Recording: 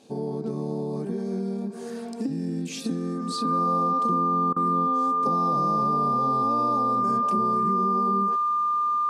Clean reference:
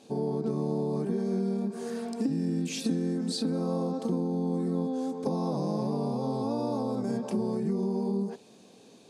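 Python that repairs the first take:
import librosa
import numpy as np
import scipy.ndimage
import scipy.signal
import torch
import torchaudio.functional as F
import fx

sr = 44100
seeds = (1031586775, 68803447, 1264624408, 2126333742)

y = fx.notch(x, sr, hz=1200.0, q=30.0)
y = fx.fix_interpolate(y, sr, at_s=(4.53,), length_ms=32.0)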